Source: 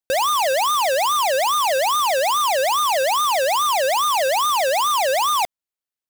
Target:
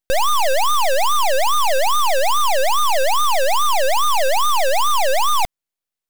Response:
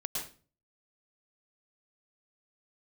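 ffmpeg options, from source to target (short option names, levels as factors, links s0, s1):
-af "aeval=exprs='max(val(0),0)':c=same,volume=2.24"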